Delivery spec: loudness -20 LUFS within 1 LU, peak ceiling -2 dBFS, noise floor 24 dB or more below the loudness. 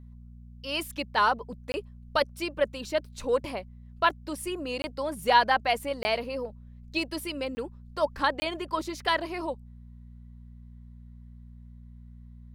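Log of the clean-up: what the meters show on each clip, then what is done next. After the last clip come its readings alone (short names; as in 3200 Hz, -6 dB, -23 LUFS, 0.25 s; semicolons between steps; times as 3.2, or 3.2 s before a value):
dropouts 5; longest dropout 20 ms; hum 60 Hz; harmonics up to 240 Hz; hum level -45 dBFS; loudness -29.5 LUFS; peak -9.0 dBFS; loudness target -20.0 LUFS
-> interpolate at 1.72/4.82/6.03/7.55/8.4, 20 ms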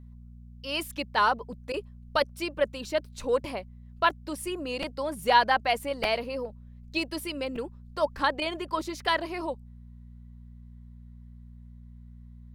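dropouts 0; hum 60 Hz; harmonics up to 240 Hz; hum level -45 dBFS
-> de-hum 60 Hz, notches 4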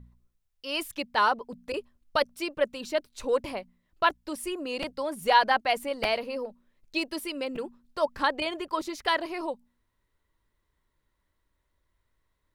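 hum none; loudness -29.0 LUFS; peak -9.0 dBFS; loudness target -20.0 LUFS
-> gain +9 dB; limiter -2 dBFS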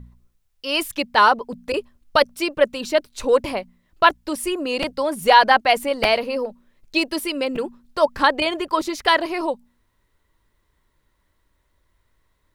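loudness -20.5 LUFS; peak -2.0 dBFS; noise floor -68 dBFS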